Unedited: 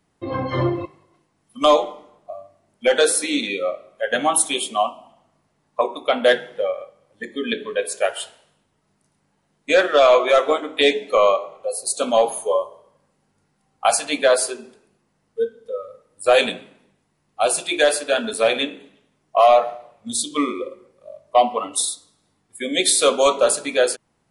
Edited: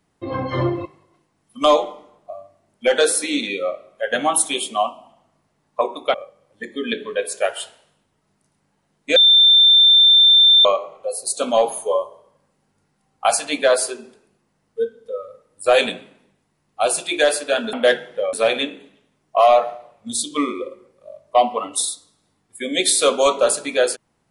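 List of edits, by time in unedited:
6.14–6.74 move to 18.33
9.76–11.25 bleep 3570 Hz -8 dBFS

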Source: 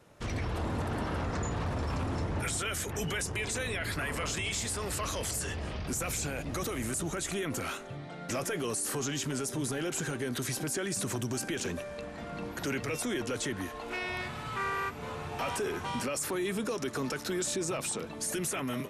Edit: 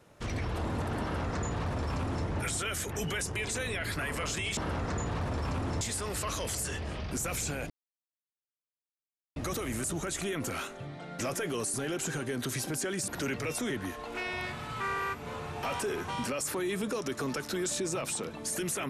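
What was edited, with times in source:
1.02–2.26 copy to 4.57
6.46 insert silence 1.66 s
8.84–9.67 cut
11.01–12.52 cut
13.14–13.46 cut

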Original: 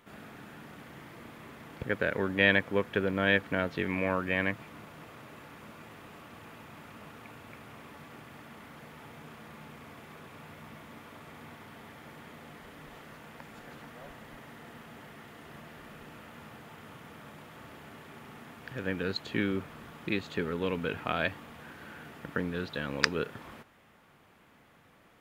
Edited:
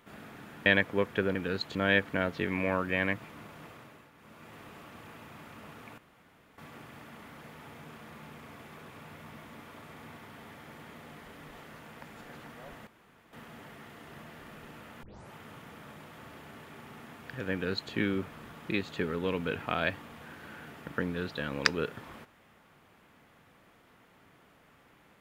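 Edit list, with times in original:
0.66–2.44 cut
5.05–5.97 dip -10.5 dB, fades 0.45 s
7.36–7.96 room tone
14.25–14.71 room tone
16.41 tape start 0.30 s
18.9–19.3 copy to 3.13

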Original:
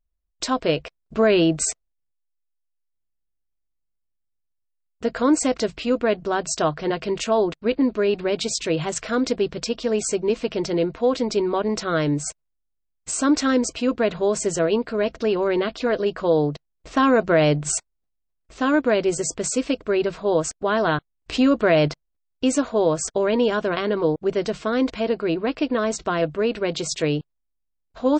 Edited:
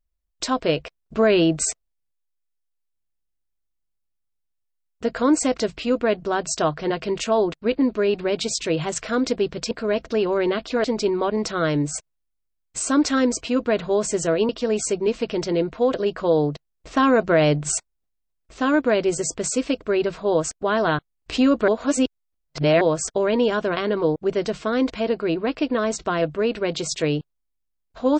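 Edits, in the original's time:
9.71–11.16 swap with 14.81–15.94
21.68–22.81 reverse

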